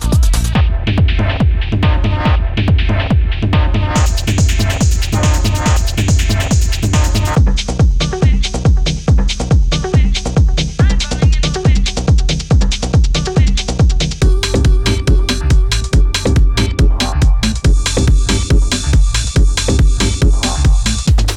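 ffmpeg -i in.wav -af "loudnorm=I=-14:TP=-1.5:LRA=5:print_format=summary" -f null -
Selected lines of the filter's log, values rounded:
Input Integrated:    -13.8 LUFS
Input True Peak:      -3.7 dBTP
Input LRA:             0.6 LU
Input Threshold:     -23.8 LUFS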